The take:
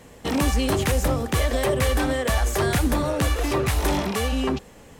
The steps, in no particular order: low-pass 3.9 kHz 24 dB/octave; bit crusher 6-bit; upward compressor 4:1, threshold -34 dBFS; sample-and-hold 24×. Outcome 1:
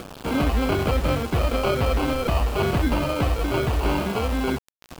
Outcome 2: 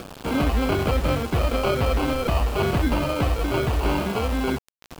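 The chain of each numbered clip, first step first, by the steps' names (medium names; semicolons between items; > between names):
sample-and-hold > low-pass > upward compressor > bit crusher; sample-and-hold > upward compressor > low-pass > bit crusher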